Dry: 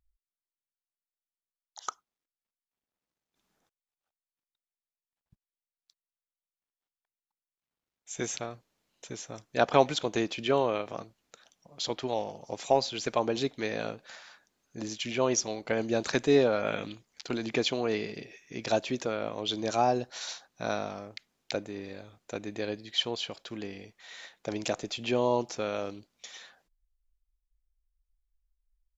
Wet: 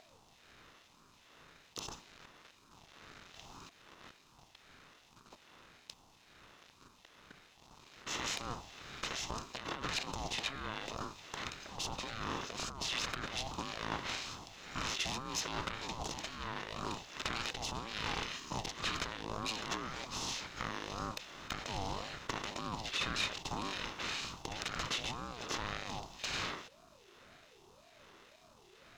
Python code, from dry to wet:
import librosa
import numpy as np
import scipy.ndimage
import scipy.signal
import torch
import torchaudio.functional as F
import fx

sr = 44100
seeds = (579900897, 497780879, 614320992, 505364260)

y = fx.bin_compress(x, sr, power=0.4)
y = fx.lowpass(y, sr, hz=2900.0, slope=6)
y = fx.peak_eq(y, sr, hz=140.0, db=-13.5, octaves=1.6)
y = fx.over_compress(y, sr, threshold_db=-28.0, ratio=-1.0)
y = fx.tube_stage(y, sr, drive_db=20.0, bias=0.5)
y = fx.backlash(y, sr, play_db=-52.0)
y = fx.phaser_stages(y, sr, stages=2, low_hz=180.0, high_hz=1500.0, hz=1.2, feedback_pct=35)
y = fx.ring_lfo(y, sr, carrier_hz=530.0, swing_pct=30, hz=1.9)
y = y * 10.0 ** (-2.5 / 20.0)